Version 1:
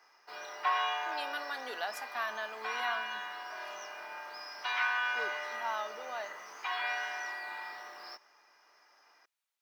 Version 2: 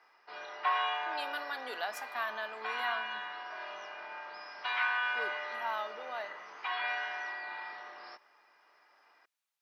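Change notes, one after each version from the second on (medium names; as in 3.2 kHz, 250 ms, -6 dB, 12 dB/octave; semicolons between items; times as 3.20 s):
background: add low-pass 4.3 kHz 24 dB/octave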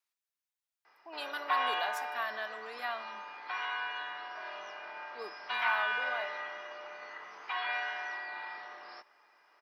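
background: entry +0.85 s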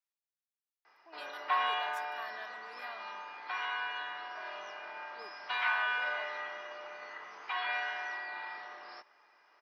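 speech -7.5 dB; reverb: off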